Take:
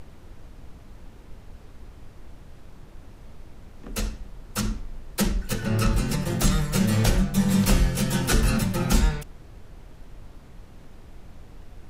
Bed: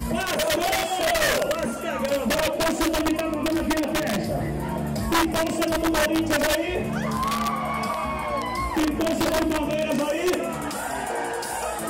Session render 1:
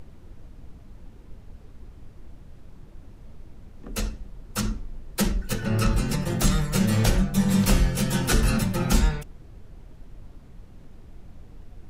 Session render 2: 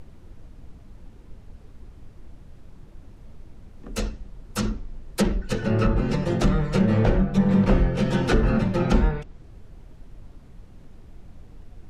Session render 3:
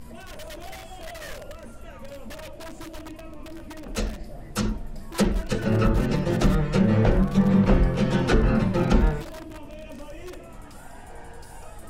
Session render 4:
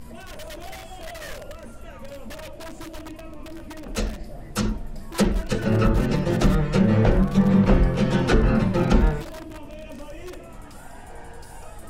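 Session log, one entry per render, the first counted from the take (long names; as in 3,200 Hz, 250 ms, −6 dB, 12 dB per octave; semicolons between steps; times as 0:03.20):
broadband denoise 6 dB, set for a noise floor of −47 dBFS
treble cut that deepens with the level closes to 1,900 Hz, closed at −17 dBFS; dynamic equaliser 430 Hz, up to +7 dB, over −39 dBFS, Q 0.84
mix in bed −17.5 dB
level +1.5 dB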